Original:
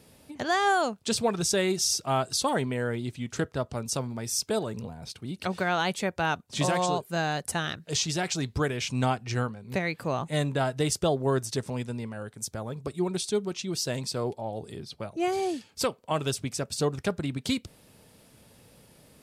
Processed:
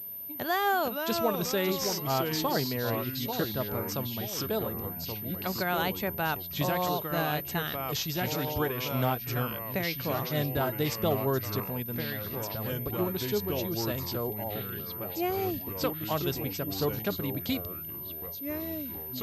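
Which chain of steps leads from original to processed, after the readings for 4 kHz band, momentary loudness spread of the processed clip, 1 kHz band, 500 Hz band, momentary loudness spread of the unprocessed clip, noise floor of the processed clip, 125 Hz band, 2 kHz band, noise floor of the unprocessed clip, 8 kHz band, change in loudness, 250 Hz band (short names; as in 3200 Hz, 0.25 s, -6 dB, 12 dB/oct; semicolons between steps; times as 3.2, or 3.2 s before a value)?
-2.5 dB, 6 LU, -2.0 dB, -1.5 dB, 10 LU, -39 dBFS, -1.5 dB, -2.0 dB, -59 dBFS, -8.5 dB, -1.5 dB, -1.5 dB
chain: echoes that change speed 0.377 s, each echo -3 st, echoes 3, each echo -6 dB; pulse-width modulation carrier 13000 Hz; gain -3 dB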